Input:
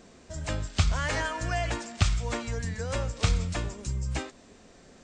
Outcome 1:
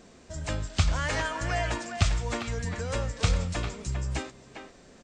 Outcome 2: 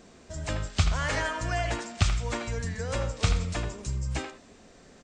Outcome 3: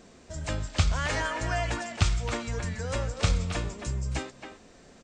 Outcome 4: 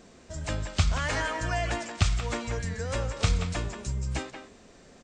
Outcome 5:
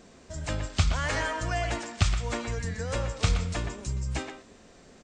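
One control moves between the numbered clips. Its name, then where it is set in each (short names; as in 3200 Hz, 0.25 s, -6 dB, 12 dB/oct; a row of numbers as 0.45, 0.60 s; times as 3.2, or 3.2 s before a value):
speakerphone echo, time: 400, 80, 270, 180, 120 ms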